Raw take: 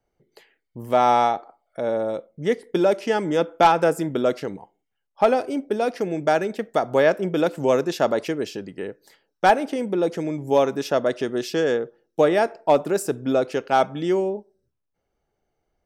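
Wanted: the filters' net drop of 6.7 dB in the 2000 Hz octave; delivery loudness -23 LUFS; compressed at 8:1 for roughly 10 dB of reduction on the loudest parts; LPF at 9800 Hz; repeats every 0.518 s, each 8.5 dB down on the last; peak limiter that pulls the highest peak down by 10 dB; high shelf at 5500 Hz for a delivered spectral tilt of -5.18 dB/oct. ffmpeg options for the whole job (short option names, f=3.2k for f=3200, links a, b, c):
-af "lowpass=9.8k,equalizer=f=2k:t=o:g=-8.5,highshelf=f=5.5k:g=-8.5,acompressor=threshold=-23dB:ratio=8,alimiter=limit=-21dB:level=0:latency=1,aecho=1:1:518|1036|1554|2072:0.376|0.143|0.0543|0.0206,volume=8dB"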